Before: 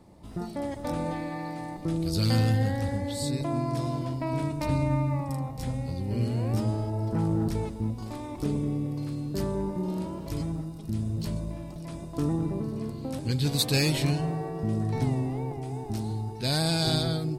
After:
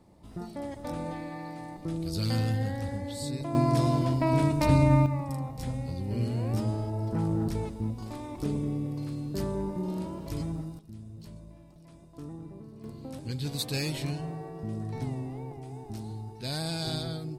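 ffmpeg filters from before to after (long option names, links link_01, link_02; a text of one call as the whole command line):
ffmpeg -i in.wav -af "asetnsamples=nb_out_samples=441:pad=0,asendcmd='3.55 volume volume 5dB;5.06 volume volume -2dB;10.79 volume volume -14.5dB;12.84 volume volume -7dB',volume=-4.5dB" out.wav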